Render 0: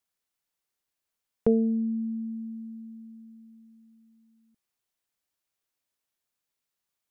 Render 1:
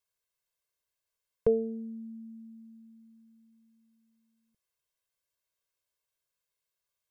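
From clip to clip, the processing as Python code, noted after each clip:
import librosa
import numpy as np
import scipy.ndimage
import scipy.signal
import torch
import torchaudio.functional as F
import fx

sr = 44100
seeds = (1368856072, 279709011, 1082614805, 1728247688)

y = x + 0.95 * np.pad(x, (int(1.9 * sr / 1000.0), 0))[:len(x)]
y = y * 10.0 ** (-5.0 / 20.0)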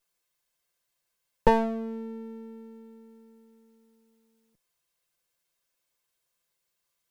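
y = fx.lower_of_two(x, sr, delay_ms=5.8)
y = y * 10.0 ** (8.5 / 20.0)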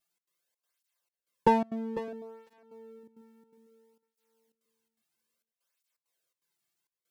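y = fx.step_gate(x, sr, bpm=166, pattern='xx.xxx.xxxxx..xx', floor_db=-24.0, edge_ms=4.5)
y = fx.echo_feedback(y, sr, ms=500, feedback_pct=18, wet_db=-13.0)
y = fx.flanger_cancel(y, sr, hz=0.6, depth_ms=2.1)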